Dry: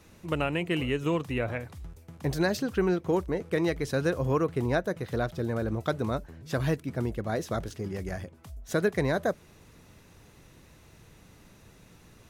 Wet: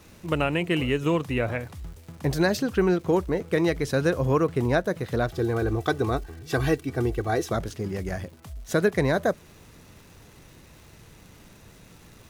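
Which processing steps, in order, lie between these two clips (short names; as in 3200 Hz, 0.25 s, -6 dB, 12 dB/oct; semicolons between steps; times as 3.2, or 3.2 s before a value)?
crackle 450/s -49 dBFS; 5.28–7.52 comb 2.6 ms, depth 71%; gain +4 dB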